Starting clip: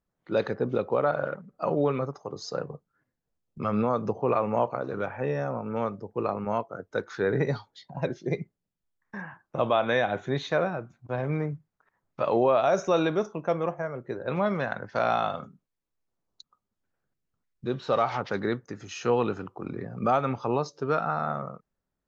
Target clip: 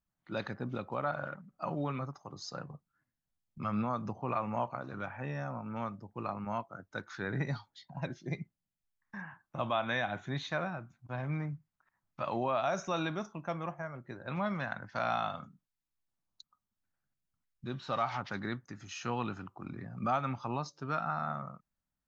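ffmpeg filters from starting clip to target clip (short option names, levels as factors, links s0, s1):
-af "equalizer=f=450:t=o:w=0.71:g=-14.5,volume=0.596"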